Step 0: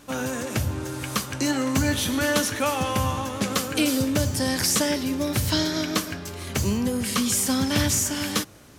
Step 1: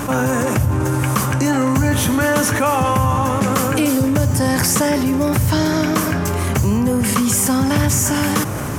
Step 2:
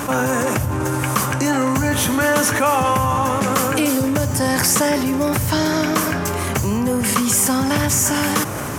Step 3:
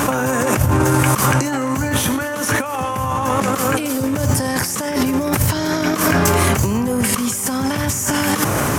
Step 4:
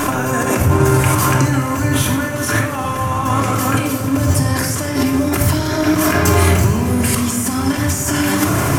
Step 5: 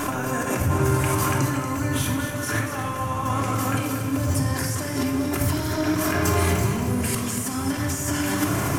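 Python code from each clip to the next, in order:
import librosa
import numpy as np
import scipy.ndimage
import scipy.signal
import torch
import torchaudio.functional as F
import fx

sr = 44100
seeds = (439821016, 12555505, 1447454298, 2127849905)

y1 = fx.graphic_eq(x, sr, hz=(125, 1000, 4000), db=(7, 5, -10))
y1 = fx.env_flatten(y1, sr, amount_pct=70)
y1 = y1 * librosa.db_to_amplitude(1.5)
y2 = fx.low_shelf(y1, sr, hz=240.0, db=-7.5)
y2 = y2 * librosa.db_to_amplitude(1.0)
y3 = fx.over_compress(y2, sr, threshold_db=-21.0, ratio=-0.5)
y3 = y3 * librosa.db_to_amplitude(4.0)
y4 = fx.echo_diffused(y3, sr, ms=489, feedback_pct=63, wet_db=-15.0)
y4 = fx.room_shoebox(y4, sr, seeds[0], volume_m3=2500.0, walls='furnished', distance_m=3.1)
y4 = y4 * librosa.db_to_amplitude(-2.0)
y5 = y4 + 10.0 ** (-8.5 / 20.0) * np.pad(y4, (int(234 * sr / 1000.0), 0))[:len(y4)]
y5 = y5 * librosa.db_to_amplitude(-8.5)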